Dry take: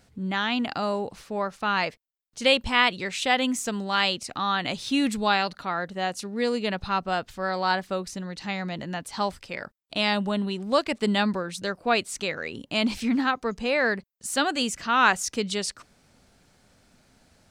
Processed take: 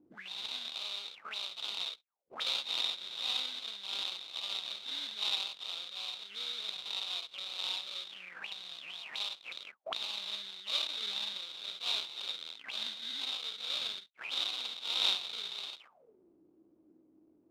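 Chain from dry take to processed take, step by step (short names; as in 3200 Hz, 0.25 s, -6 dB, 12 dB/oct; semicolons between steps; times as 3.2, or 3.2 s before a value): spectral dilation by 0.12 s; sample-rate reducer 1800 Hz, jitter 20%; auto-wah 290–3700 Hz, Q 14, up, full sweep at -24 dBFS; gain +6 dB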